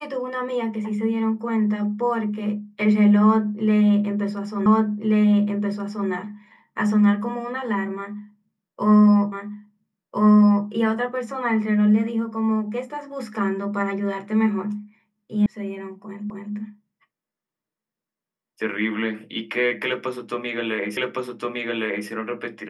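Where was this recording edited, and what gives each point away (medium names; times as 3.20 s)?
4.66 s: repeat of the last 1.43 s
9.32 s: repeat of the last 1.35 s
15.46 s: sound stops dead
16.30 s: repeat of the last 0.26 s
20.97 s: repeat of the last 1.11 s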